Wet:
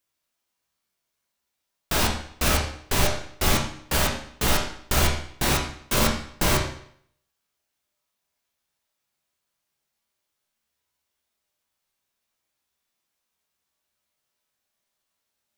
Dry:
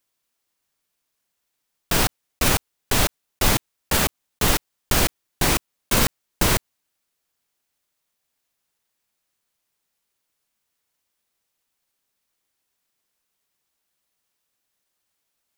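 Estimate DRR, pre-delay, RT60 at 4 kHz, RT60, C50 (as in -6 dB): -0.5 dB, 13 ms, 0.60 s, 0.65 s, 5.5 dB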